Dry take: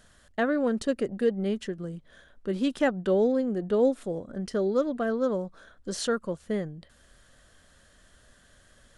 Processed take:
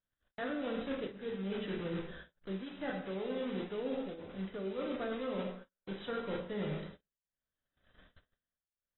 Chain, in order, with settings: block-companded coder 3-bit; band-stop 5.4 kHz, Q 8.3; plate-style reverb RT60 0.82 s, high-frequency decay 0.85×, DRR 1 dB; tremolo triangle 0.66 Hz, depth 95%; gate -53 dBFS, range -36 dB; reverse; compression 16:1, threshold -38 dBFS, peak gain reduction 21.5 dB; reverse; trim +3.5 dB; AAC 16 kbps 24 kHz

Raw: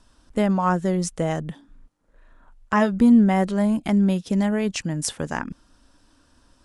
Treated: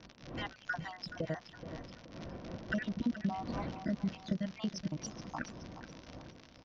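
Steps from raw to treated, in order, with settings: random holes in the spectrogram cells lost 72%; wind noise 410 Hz -44 dBFS; compression 4:1, threshold -32 dBFS, peak gain reduction 15.5 dB; comb of notches 420 Hz; crackle 77 per s -32 dBFS; harmony voices -3 st -17 dB; elliptic low-pass 5.8 kHz, stop band 40 dB; feedback delay 425 ms, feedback 38%, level -11.5 dB; random flutter of the level, depth 55%; trim +2.5 dB

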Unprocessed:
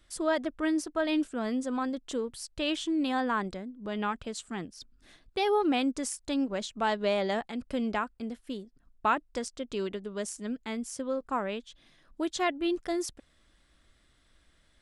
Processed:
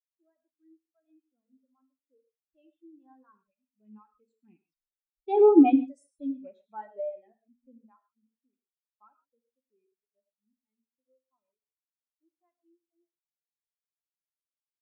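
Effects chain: rattle on loud lows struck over -44 dBFS, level -27 dBFS; Doppler pass-by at 5.64 s, 6 m/s, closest 3.5 m; reverb removal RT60 1.8 s; gated-style reverb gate 180 ms flat, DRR 2.5 dB; spectral contrast expander 2.5:1; trim +8 dB

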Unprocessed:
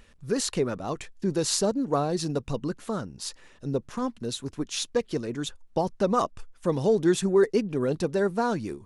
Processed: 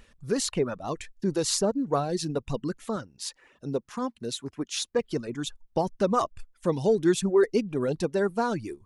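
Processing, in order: reverb removal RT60 0.68 s; 2.96–4.99 s: high-pass 160 Hz 6 dB/octave

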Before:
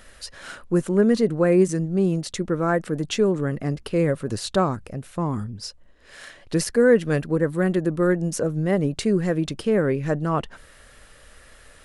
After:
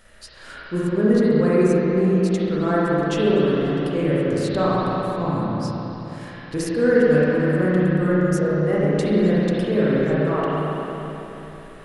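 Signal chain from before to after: spring tank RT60 3.7 s, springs 33/52 ms, chirp 40 ms, DRR -8.5 dB; trim -6 dB

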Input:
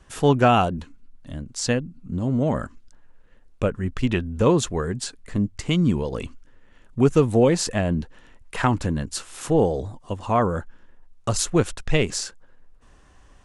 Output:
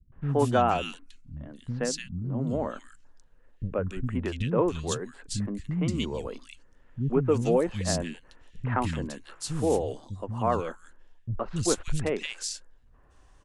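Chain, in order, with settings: three bands offset in time lows, mids, highs 120/290 ms, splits 220/2100 Hz; trim -5 dB

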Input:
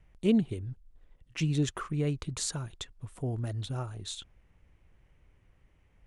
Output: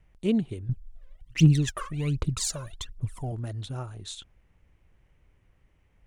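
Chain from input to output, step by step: 0.69–3.32 s: phaser 1.3 Hz, delay 2 ms, feedback 79%

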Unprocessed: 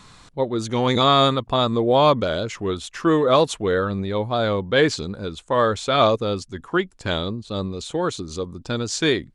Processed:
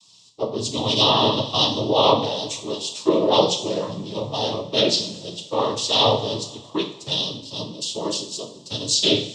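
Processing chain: noise-vocoded speech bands 12; FFT filter 1.1 kHz 0 dB, 1.5 kHz -22 dB, 3.4 kHz +12 dB; two-slope reverb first 0.48 s, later 3.1 s, from -18 dB, DRR 2 dB; low-pass that closes with the level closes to 2.3 kHz, closed at -6.5 dBFS; three bands expanded up and down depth 40%; trim -4 dB

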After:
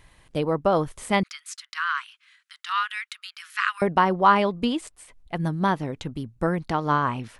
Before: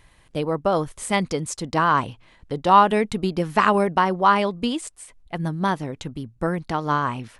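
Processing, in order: 1.23–3.82 s: steep high-pass 1.3 kHz 48 dB/octave; dynamic bell 8.1 kHz, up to -8 dB, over -47 dBFS, Q 0.79

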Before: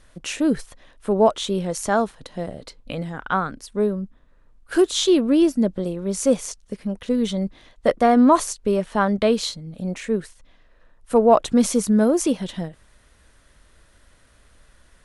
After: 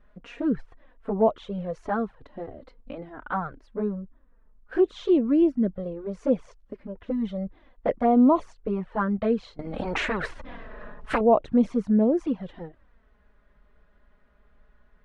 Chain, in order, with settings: low-pass 1.6 kHz 12 dB/octave; touch-sensitive flanger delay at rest 5 ms, full sweep at -12 dBFS; 9.59–11.21 s: spectrum-flattening compressor 4:1; trim -2.5 dB

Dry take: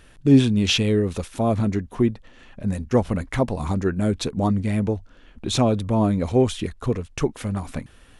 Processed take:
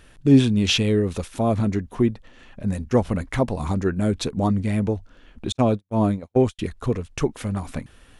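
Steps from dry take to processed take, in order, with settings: 5.52–6.59 s: gate -19 dBFS, range -54 dB

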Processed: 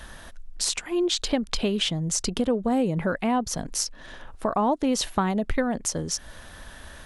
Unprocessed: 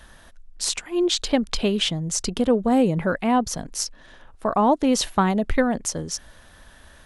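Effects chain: compression 2:1, threshold -34 dBFS, peak gain reduction 11 dB; trim +5.5 dB

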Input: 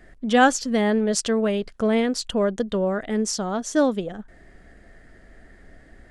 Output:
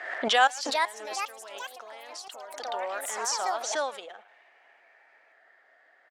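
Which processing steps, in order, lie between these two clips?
level-controlled noise filter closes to 2.3 kHz, open at -15 dBFS; treble shelf 3.5 kHz +10 dB; 0.47–2.65 s: compression 6:1, threshold -33 dBFS, peak gain reduction 17.5 dB; speakerphone echo 110 ms, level -14 dB; ever faster or slower copies 477 ms, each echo +4 st, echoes 3, each echo -6 dB; ladder high-pass 620 Hz, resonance 30%; swell ahead of each attack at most 54 dB/s

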